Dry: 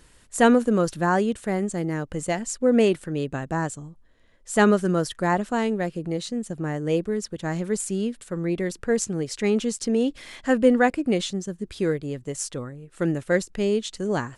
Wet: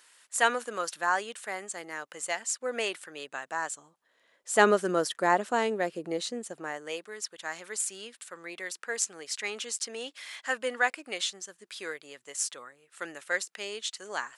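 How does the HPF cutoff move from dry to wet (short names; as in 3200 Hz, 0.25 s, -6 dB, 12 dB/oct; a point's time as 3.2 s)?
3.57 s 1000 Hz
4.66 s 410 Hz
6.32 s 410 Hz
6.97 s 1100 Hz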